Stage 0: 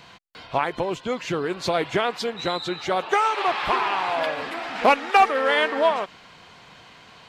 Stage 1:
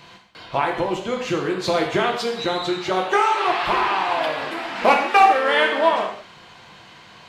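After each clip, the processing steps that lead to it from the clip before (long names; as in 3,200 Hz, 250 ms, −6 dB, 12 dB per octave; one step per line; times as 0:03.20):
convolution reverb, pre-delay 3 ms, DRR 0.5 dB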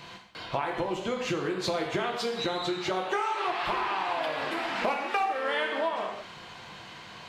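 downward compressor 4 to 1, threshold −28 dBFS, peak gain reduction 16 dB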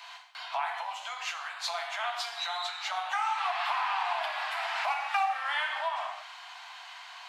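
Butterworth high-pass 690 Hz 72 dB per octave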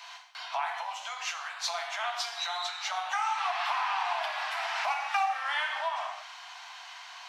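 parametric band 5,800 Hz +7 dB 0.33 octaves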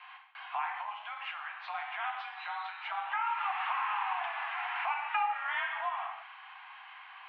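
single-sideband voice off tune +53 Hz 490–2,800 Hz
level −2.5 dB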